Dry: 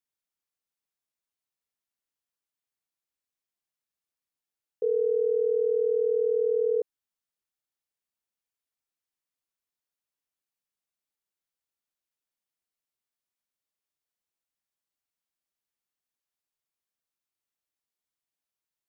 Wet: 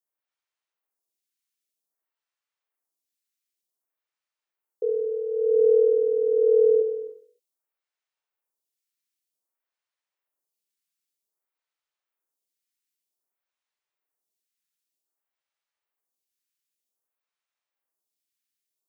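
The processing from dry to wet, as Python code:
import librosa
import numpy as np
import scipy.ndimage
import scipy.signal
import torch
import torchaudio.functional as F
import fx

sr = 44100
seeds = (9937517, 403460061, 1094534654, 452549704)

y = scipy.signal.sosfilt(scipy.signal.butter(2, 300.0, 'highpass', fs=sr, output='sos'), x)
y = fx.echo_feedback(y, sr, ms=66, feedback_pct=35, wet_db=-7)
y = fx.rev_gated(y, sr, seeds[0], gate_ms=320, shape='rising', drr_db=2.0)
y = fx.stagger_phaser(y, sr, hz=0.53)
y = y * librosa.db_to_amplitude(3.0)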